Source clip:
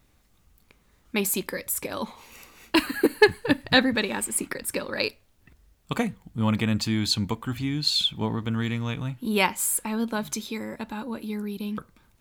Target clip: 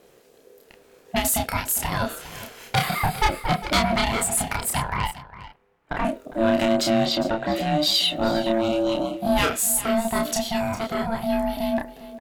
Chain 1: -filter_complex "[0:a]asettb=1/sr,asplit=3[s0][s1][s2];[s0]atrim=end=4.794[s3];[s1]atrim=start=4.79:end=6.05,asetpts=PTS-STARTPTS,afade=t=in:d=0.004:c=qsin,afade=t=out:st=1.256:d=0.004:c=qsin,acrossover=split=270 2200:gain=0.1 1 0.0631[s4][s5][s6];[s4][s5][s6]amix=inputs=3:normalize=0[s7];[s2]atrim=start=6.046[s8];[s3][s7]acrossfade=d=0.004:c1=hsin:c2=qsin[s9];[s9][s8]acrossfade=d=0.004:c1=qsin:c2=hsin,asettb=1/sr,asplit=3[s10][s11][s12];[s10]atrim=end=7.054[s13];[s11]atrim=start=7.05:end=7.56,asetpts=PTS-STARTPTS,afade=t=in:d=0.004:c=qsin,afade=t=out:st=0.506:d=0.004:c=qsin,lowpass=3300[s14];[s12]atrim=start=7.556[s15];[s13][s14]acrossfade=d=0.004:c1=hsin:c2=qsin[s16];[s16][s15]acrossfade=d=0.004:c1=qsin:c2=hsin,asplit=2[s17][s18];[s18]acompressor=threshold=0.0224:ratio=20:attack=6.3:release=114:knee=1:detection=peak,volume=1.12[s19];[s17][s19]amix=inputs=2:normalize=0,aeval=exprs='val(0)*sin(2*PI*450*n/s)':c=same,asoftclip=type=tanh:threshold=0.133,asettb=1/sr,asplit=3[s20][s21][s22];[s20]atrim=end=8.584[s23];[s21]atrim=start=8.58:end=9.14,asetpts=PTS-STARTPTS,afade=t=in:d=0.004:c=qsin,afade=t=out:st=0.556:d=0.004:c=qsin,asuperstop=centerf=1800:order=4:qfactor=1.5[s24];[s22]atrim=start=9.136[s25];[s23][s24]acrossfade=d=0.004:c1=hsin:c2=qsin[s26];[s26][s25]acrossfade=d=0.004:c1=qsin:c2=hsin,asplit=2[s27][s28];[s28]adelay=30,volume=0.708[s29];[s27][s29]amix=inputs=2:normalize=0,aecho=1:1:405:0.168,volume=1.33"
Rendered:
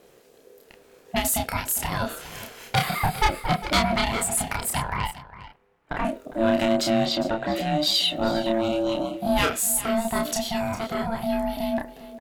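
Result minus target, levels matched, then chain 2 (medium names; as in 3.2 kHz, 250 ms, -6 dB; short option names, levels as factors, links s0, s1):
compression: peak gain reduction +6.5 dB
-filter_complex "[0:a]asettb=1/sr,asplit=3[s0][s1][s2];[s0]atrim=end=4.794[s3];[s1]atrim=start=4.79:end=6.05,asetpts=PTS-STARTPTS,afade=t=in:d=0.004:c=qsin,afade=t=out:st=1.256:d=0.004:c=qsin,acrossover=split=270 2200:gain=0.1 1 0.0631[s4][s5][s6];[s4][s5][s6]amix=inputs=3:normalize=0[s7];[s2]atrim=start=6.046[s8];[s3][s7]acrossfade=d=0.004:c1=hsin:c2=qsin[s9];[s9][s8]acrossfade=d=0.004:c1=qsin:c2=hsin,asettb=1/sr,asplit=3[s10][s11][s12];[s10]atrim=end=7.054[s13];[s11]atrim=start=7.05:end=7.56,asetpts=PTS-STARTPTS,afade=t=in:d=0.004:c=qsin,afade=t=out:st=0.506:d=0.004:c=qsin,lowpass=3300[s14];[s12]atrim=start=7.556[s15];[s13][s14]acrossfade=d=0.004:c1=hsin:c2=qsin[s16];[s16][s15]acrossfade=d=0.004:c1=qsin:c2=hsin,asplit=2[s17][s18];[s18]acompressor=threshold=0.0501:ratio=20:attack=6.3:release=114:knee=1:detection=peak,volume=1.12[s19];[s17][s19]amix=inputs=2:normalize=0,aeval=exprs='val(0)*sin(2*PI*450*n/s)':c=same,asoftclip=type=tanh:threshold=0.133,asettb=1/sr,asplit=3[s20][s21][s22];[s20]atrim=end=8.584[s23];[s21]atrim=start=8.58:end=9.14,asetpts=PTS-STARTPTS,afade=t=in:d=0.004:c=qsin,afade=t=out:st=0.556:d=0.004:c=qsin,asuperstop=centerf=1800:order=4:qfactor=1.5[s24];[s22]atrim=start=9.136[s25];[s23][s24]acrossfade=d=0.004:c1=hsin:c2=qsin[s26];[s26][s25]acrossfade=d=0.004:c1=qsin:c2=hsin,asplit=2[s27][s28];[s28]adelay=30,volume=0.708[s29];[s27][s29]amix=inputs=2:normalize=0,aecho=1:1:405:0.168,volume=1.33"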